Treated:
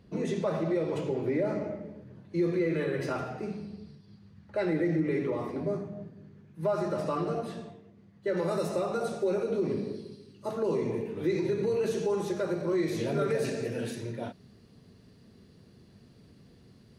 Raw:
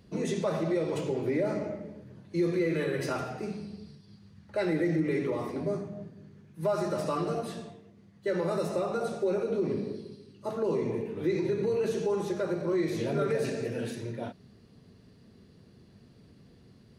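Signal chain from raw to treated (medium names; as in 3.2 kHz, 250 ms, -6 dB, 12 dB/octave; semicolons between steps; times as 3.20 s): treble shelf 4.4 kHz -9 dB, from 8.37 s +2.5 dB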